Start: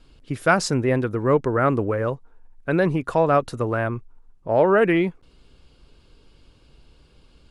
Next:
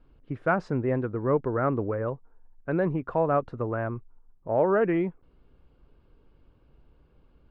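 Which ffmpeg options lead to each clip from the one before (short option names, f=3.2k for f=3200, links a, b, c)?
-af "lowpass=1.5k,volume=-5.5dB"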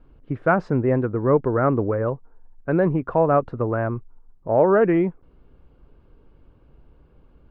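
-af "highshelf=f=3.1k:g=-9.5,volume=6.5dB"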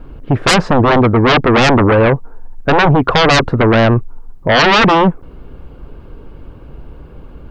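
-af "aeval=exprs='0.501*sin(PI/2*5.62*val(0)/0.501)':c=same"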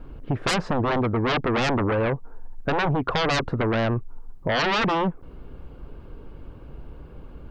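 -af "acompressor=threshold=-17dB:ratio=2.5,volume=-7dB"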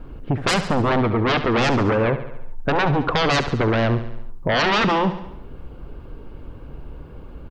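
-af "aecho=1:1:70|140|210|280|350|420:0.251|0.143|0.0816|0.0465|0.0265|0.0151,volume=3.5dB"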